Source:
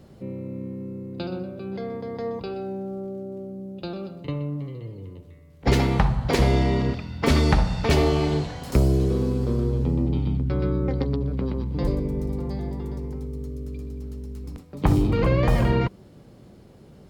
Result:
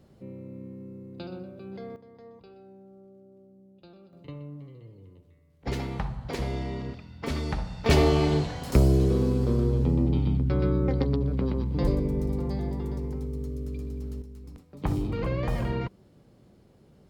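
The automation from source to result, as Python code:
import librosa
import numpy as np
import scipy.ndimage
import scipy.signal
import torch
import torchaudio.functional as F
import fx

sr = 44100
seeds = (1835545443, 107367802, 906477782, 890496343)

y = fx.gain(x, sr, db=fx.steps((0.0, -8.0), (1.96, -19.0), (4.13, -11.5), (7.86, -0.5), (14.22, -8.5)))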